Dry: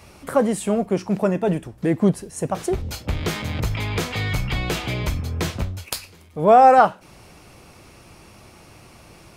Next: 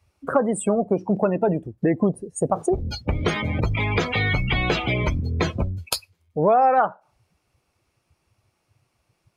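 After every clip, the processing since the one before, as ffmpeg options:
-af "afftdn=nr=31:nf=-29,lowshelf=f=280:g=-7,acompressor=threshold=-25dB:ratio=4,volume=8dB"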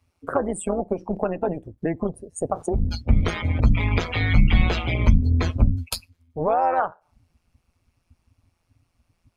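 -af "asubboost=boost=10.5:cutoff=62,tremolo=f=170:d=0.71"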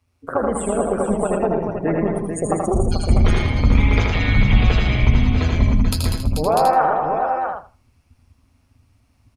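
-filter_complex "[0:a]asplit=2[a][b];[b]aecho=0:1:116|195|250|437|647:0.473|0.316|0.112|0.398|0.473[c];[a][c]amix=inputs=2:normalize=0,dynaudnorm=f=210:g=3:m=4dB,asplit=2[d][e];[e]aecho=0:1:80|160|240:0.631|0.107|0.0182[f];[d][f]amix=inputs=2:normalize=0,volume=-1dB"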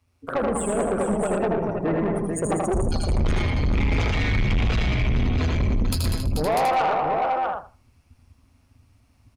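-af "asoftclip=type=tanh:threshold=-17.5dB"

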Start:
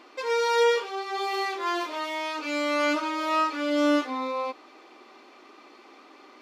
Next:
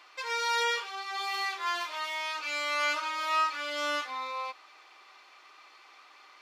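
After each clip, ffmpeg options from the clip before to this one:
-af "highpass=1.1k"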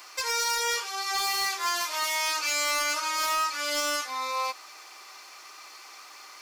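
-af "aexciter=amount=3.2:drive=8.2:freq=4.9k,alimiter=limit=-24dB:level=0:latency=1:release=451,aeval=exprs='0.0422*(abs(mod(val(0)/0.0422+3,4)-2)-1)':c=same,volume=6.5dB"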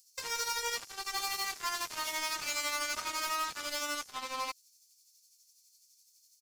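-filter_complex "[0:a]asplit=2[a][b];[b]adelay=180,highpass=300,lowpass=3.4k,asoftclip=type=hard:threshold=-29.5dB,volume=-14dB[c];[a][c]amix=inputs=2:normalize=0,tremolo=f=12:d=0.42,acrossover=split=5800[d][e];[d]acrusher=bits=4:mix=0:aa=0.5[f];[f][e]amix=inputs=2:normalize=0,volume=-6dB"

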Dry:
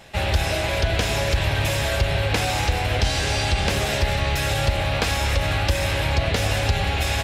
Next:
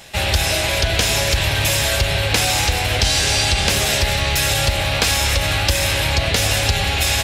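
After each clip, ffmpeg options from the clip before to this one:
-af "highshelf=f=3k:g=11.5,volume=1.5dB"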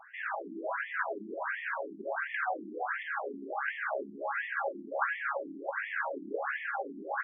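-af "highshelf=f=2.1k:t=q:w=3:g=-13,afftfilt=real='re*between(b*sr/1024,260*pow(2500/260,0.5+0.5*sin(2*PI*1.4*pts/sr))/1.41,260*pow(2500/260,0.5+0.5*sin(2*PI*1.4*pts/sr))*1.41)':imag='im*between(b*sr/1024,260*pow(2500/260,0.5+0.5*sin(2*PI*1.4*pts/sr))/1.41,260*pow(2500/260,0.5+0.5*sin(2*PI*1.4*pts/sr))*1.41)':win_size=1024:overlap=0.75,volume=-7dB"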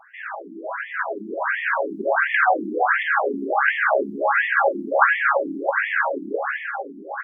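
-af "dynaudnorm=f=320:g=9:m=12dB,volume=3.5dB"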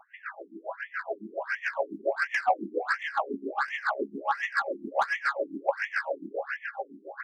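-filter_complex "[0:a]acrossover=split=780[a][b];[b]asoftclip=type=tanh:threshold=-16.5dB[c];[a][c]amix=inputs=2:normalize=0,aeval=exprs='val(0)*pow(10,-19*(0.5-0.5*cos(2*PI*7.2*n/s))/20)':c=same,volume=-3dB"

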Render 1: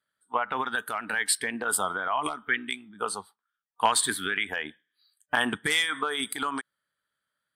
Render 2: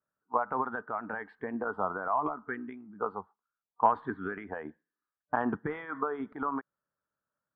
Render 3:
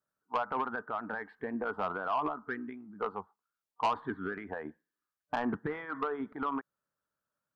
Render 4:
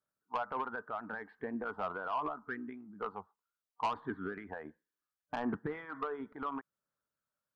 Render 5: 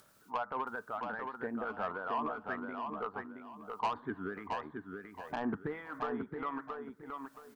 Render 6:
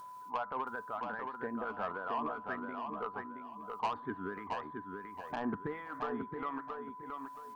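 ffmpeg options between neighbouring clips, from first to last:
-af "lowpass=f=1.2k:w=0.5412,lowpass=f=1.2k:w=1.3066"
-af "asoftclip=type=tanh:threshold=-23dB"
-af "aphaser=in_gain=1:out_gain=1:delay=2.1:decay=0.24:speed=0.72:type=sinusoidal,volume=-4.5dB"
-af "acompressor=mode=upward:threshold=-44dB:ratio=2.5,aecho=1:1:673|1346|2019|2692:0.562|0.152|0.041|0.0111"
-af "aeval=exprs='val(0)+0.00562*sin(2*PI*1000*n/s)':c=same,volume=-1dB"

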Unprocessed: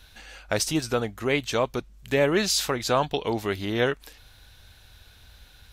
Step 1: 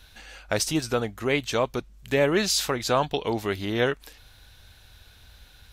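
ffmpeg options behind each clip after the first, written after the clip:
-af anull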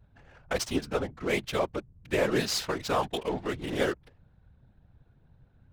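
-af "adynamicsmooth=sensitivity=7:basefreq=600,afftfilt=real='hypot(re,im)*cos(2*PI*random(0))':imag='hypot(re,im)*sin(2*PI*random(1))':win_size=512:overlap=0.75,volume=1.5dB"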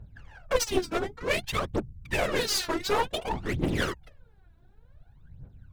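-af "aphaser=in_gain=1:out_gain=1:delay=3.1:decay=0.79:speed=0.55:type=triangular,aeval=exprs='clip(val(0),-1,0.0422)':c=same"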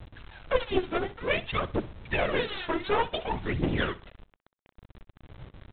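-af "aresample=8000,acrusher=bits=7:mix=0:aa=0.000001,aresample=44100,aecho=1:1:63|126:0.126|0.0352"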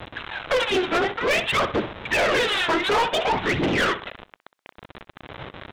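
-filter_complex "[0:a]asplit=2[a][b];[b]highpass=f=720:p=1,volume=30dB,asoftclip=type=tanh:threshold=-8.5dB[c];[a][c]amix=inputs=2:normalize=0,lowpass=f=4k:p=1,volume=-6dB,volume=-4dB"

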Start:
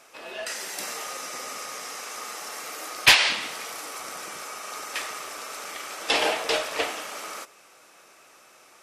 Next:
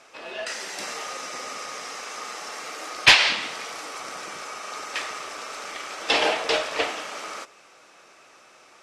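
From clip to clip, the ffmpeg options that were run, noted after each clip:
-af "lowpass=6.5k,volume=2dB"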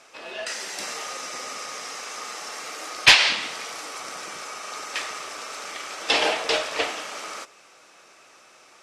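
-af "equalizer=f=12k:t=o:w=2.5:g=4,volume=-1dB"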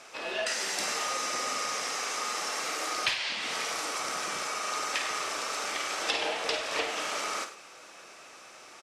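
-af "acompressor=threshold=-29dB:ratio=20,aecho=1:1:51|98:0.335|0.2,volume=2dB"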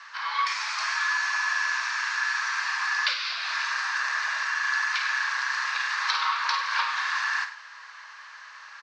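-af "afreqshift=480,highpass=370,equalizer=f=480:t=q:w=4:g=6,equalizer=f=730:t=q:w=4:g=-10,equalizer=f=1.1k:t=q:w=4:g=5,equalizer=f=1.6k:t=q:w=4:g=7,equalizer=f=3.1k:t=q:w=4:g=-9,equalizer=f=4.5k:t=q:w=4:g=4,lowpass=f=4.9k:w=0.5412,lowpass=f=4.9k:w=1.3066,volume=3.5dB"

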